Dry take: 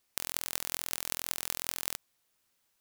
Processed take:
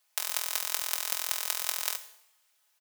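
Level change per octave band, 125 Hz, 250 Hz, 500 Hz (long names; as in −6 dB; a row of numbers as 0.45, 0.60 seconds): below −35 dB, below −20 dB, +0.5 dB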